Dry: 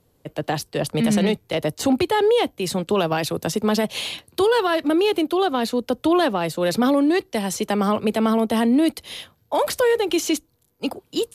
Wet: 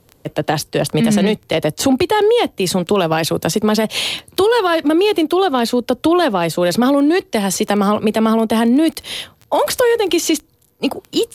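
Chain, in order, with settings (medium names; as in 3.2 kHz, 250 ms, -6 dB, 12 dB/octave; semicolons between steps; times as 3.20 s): compression 2:1, threshold -23 dBFS, peak gain reduction 5 dB; crackle 10 per s -32 dBFS; trim +9 dB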